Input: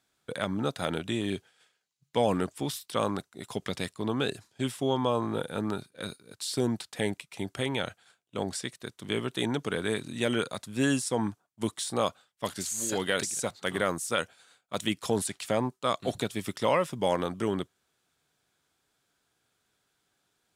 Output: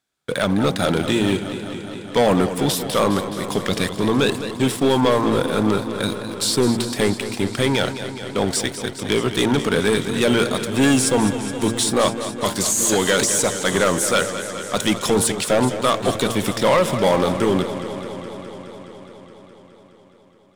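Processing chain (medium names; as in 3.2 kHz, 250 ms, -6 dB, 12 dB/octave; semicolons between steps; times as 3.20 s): de-hum 114.2 Hz, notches 9; waveshaping leveller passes 3; modulated delay 209 ms, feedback 78%, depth 81 cents, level -11.5 dB; trim +2.5 dB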